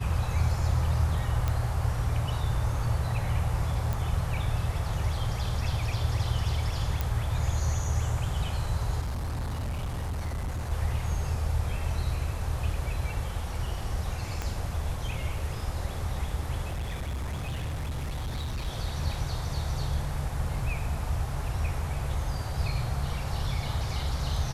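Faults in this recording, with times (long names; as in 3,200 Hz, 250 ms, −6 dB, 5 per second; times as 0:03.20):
0:01.48: click −15 dBFS
0:03.93: click
0:07.01: click
0:09.01–0:10.72: clipping −28.5 dBFS
0:14.42: click −18 dBFS
0:16.71–0:18.68: clipping −29 dBFS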